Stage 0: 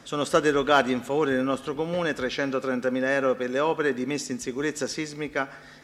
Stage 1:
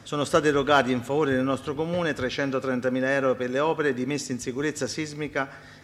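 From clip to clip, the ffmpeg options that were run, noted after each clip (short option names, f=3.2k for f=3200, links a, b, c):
-af "equalizer=f=100:t=o:w=0.62:g=14.5"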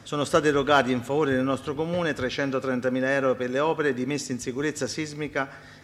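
-af anull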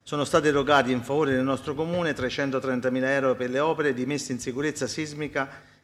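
-af "agate=range=-33dB:threshold=-39dB:ratio=3:detection=peak"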